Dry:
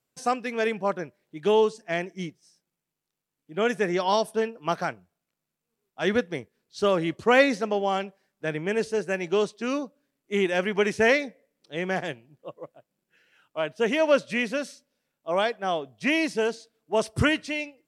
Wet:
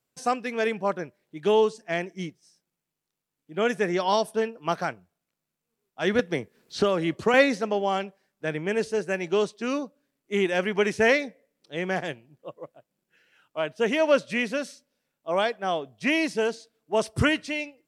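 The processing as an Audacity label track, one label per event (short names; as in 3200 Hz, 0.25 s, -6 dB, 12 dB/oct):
6.190000	7.340000	three-band squash depth 100%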